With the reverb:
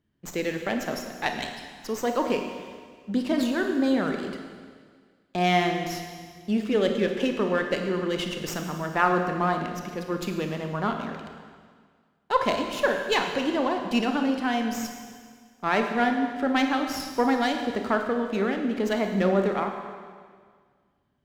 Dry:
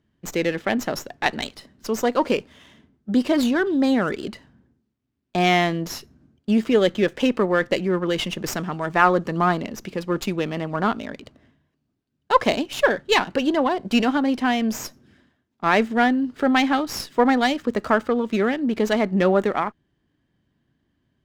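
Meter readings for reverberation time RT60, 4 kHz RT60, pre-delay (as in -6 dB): 1.8 s, 1.8 s, 28 ms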